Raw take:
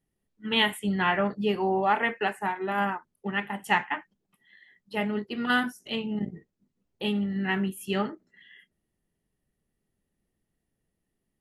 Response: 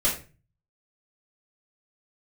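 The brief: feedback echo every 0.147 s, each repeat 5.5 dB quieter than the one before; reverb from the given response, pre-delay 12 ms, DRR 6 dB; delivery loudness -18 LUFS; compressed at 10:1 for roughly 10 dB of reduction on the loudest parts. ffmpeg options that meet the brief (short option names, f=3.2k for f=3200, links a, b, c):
-filter_complex "[0:a]acompressor=threshold=-28dB:ratio=10,aecho=1:1:147|294|441|588|735|882|1029:0.531|0.281|0.149|0.079|0.0419|0.0222|0.0118,asplit=2[a][b];[1:a]atrim=start_sample=2205,adelay=12[c];[b][c]afir=irnorm=-1:irlink=0,volume=-17dB[d];[a][d]amix=inputs=2:normalize=0,volume=13dB"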